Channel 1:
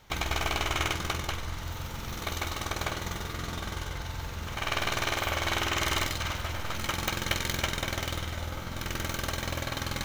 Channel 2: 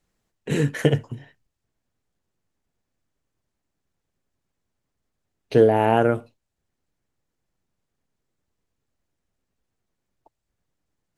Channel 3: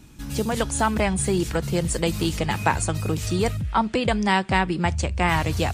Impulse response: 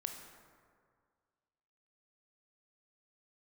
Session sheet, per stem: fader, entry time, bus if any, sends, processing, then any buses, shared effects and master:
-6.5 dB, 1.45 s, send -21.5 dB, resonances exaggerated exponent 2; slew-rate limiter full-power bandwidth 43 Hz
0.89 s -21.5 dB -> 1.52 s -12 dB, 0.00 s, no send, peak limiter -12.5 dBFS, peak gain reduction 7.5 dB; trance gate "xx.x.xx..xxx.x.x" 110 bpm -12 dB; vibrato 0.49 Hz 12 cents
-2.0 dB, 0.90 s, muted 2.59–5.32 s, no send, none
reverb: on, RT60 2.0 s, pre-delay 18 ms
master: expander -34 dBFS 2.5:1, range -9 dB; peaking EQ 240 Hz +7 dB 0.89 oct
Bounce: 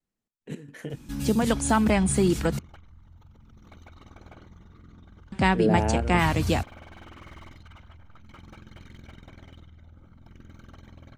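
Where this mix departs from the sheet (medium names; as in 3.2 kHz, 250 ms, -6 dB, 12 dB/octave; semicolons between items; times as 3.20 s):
stem 1 -6.5 dB -> -16.0 dB; stem 2 -21.5 dB -> -14.0 dB; master: missing expander -34 dBFS 2.5:1, range -9 dB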